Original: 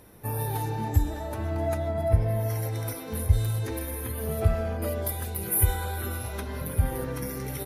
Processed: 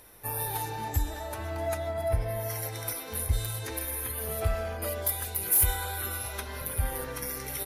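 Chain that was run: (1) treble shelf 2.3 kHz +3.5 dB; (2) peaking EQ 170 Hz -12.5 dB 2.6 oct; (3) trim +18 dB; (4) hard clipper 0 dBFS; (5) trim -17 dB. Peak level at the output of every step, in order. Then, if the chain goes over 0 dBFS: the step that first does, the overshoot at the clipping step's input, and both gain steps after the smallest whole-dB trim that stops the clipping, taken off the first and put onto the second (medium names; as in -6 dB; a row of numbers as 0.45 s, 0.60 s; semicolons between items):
-7.0 dBFS, -10.0 dBFS, +8.0 dBFS, 0.0 dBFS, -17.0 dBFS; step 3, 8.0 dB; step 3 +10 dB, step 5 -9 dB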